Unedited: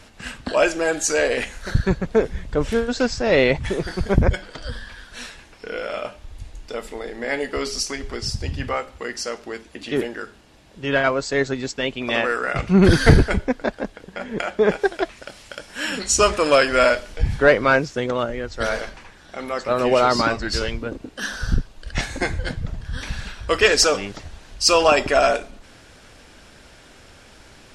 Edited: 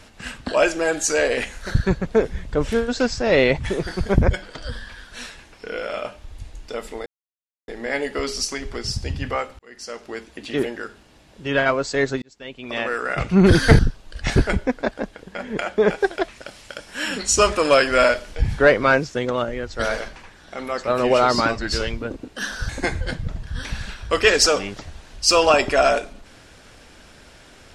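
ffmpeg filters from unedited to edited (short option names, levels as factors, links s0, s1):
-filter_complex "[0:a]asplit=7[s0][s1][s2][s3][s4][s5][s6];[s0]atrim=end=7.06,asetpts=PTS-STARTPTS,afade=t=out:st=7.056:d=0.004:c=hsin,apad=pad_dur=0.62[s7];[s1]atrim=start=7.06:end=8.97,asetpts=PTS-STARTPTS,afade=t=in:d=0.004:c=hsin,afade=t=out:st=1.906:d=0.004:c=hsin[s8];[s2]atrim=start=8.97:end=11.6,asetpts=PTS-STARTPTS,afade=t=in:d=0.58,afade=t=out:st=2.626:d=0.004:c=hsin[s9];[s3]atrim=start=11.6:end=13.172,asetpts=PTS-STARTPTS,afade=t=in:d=0.97[s10];[s4]atrim=start=21.498:end=22.072[s11];[s5]atrim=start=13.168:end=21.502[s12];[s6]atrim=start=22.068[s13];[s7][s8][s9][s10]concat=n=4:v=0:a=1[s14];[s14][s11]acrossfade=d=0.004:c1=hsin:c2=hsin[s15];[s15][s12]acrossfade=d=0.004:c1=hsin:c2=hsin[s16];[s16][s13]acrossfade=d=0.004:c1=hsin:c2=hsin"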